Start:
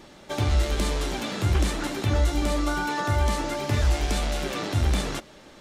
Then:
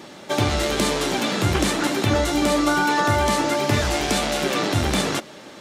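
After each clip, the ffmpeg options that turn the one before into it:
ffmpeg -i in.wav -af "highpass=140,volume=8dB" out.wav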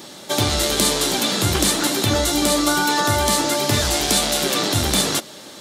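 ffmpeg -i in.wav -af "aexciter=amount=2.4:drive=6.2:freq=3400" out.wav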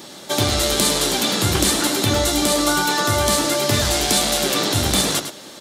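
ffmpeg -i in.wav -af "aecho=1:1:104:0.355" out.wav

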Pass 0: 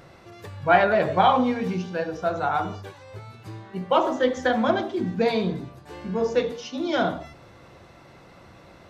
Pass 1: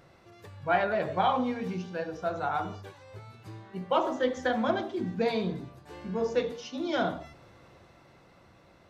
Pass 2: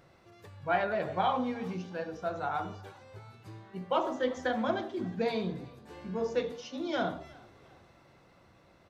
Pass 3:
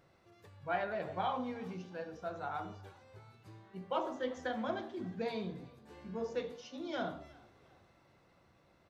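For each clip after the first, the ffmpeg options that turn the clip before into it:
ffmpeg -i in.wav -af "dynaudnorm=framelen=210:gausssize=13:maxgain=3.5dB,volume=-8.5dB" out.wav
ffmpeg -i in.wav -filter_complex "[0:a]asplit=3[link_01][link_02][link_03];[link_02]adelay=359,afreqshift=38,volume=-23.5dB[link_04];[link_03]adelay=718,afreqshift=76,volume=-32.1dB[link_05];[link_01][link_04][link_05]amix=inputs=3:normalize=0,volume=-3dB" out.wav
ffmpeg -i in.wav -af "flanger=delay=9.5:depth=4.6:regen=86:speed=0.75:shape=sinusoidal,volume=-2dB" out.wav

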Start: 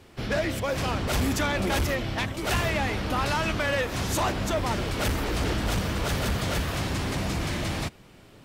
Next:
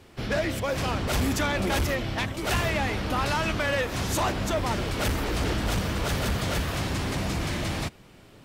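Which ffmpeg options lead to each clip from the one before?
ffmpeg -i in.wav -af anull out.wav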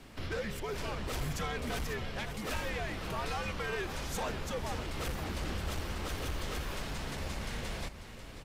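ffmpeg -i in.wav -af "alimiter=level_in=6.5dB:limit=-24dB:level=0:latency=1:release=174,volume=-6.5dB,afreqshift=-120,aecho=1:1:542:0.282" out.wav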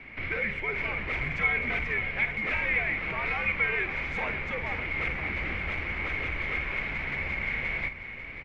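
ffmpeg -i in.wav -filter_complex "[0:a]lowpass=frequency=2200:width_type=q:width=14,asplit=2[link_01][link_02];[link_02]adelay=50,volume=-12dB[link_03];[link_01][link_03]amix=inputs=2:normalize=0" out.wav

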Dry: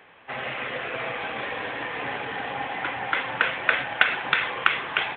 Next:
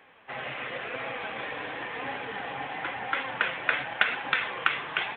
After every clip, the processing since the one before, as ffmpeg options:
ffmpeg -i in.wav -af "flanger=delay=3.6:depth=3.3:regen=67:speed=0.94:shape=sinusoidal" out.wav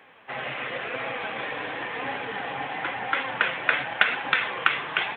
ffmpeg -i in.wav -af "highpass=76,volume=3.5dB" out.wav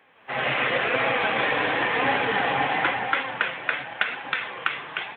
ffmpeg -i in.wav -af "dynaudnorm=framelen=130:gausssize=5:maxgain=15dB,volume=-6dB" out.wav

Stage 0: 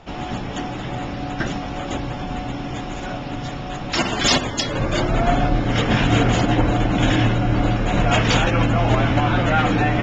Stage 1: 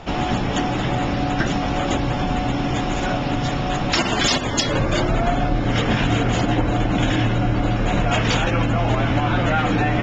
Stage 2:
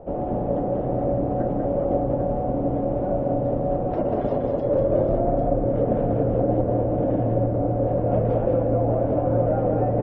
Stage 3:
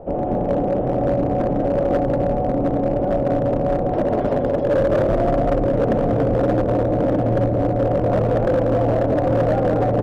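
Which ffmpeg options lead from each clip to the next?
ffmpeg -i in.wav -af "acompressor=threshold=-24dB:ratio=5,volume=7.5dB" out.wav
ffmpeg -i in.wav -filter_complex "[0:a]lowpass=frequency=550:width_type=q:width=4.9,asplit=2[link_01][link_02];[link_02]aecho=0:1:192|796:0.631|0.398[link_03];[link_01][link_03]amix=inputs=2:normalize=0,volume=-7.5dB" out.wav
ffmpeg -i in.wav -af "bandreject=frequency=60:width_type=h:width=6,bandreject=frequency=120:width_type=h:width=6,volume=17.5dB,asoftclip=hard,volume=-17.5dB,volume=4.5dB" out.wav

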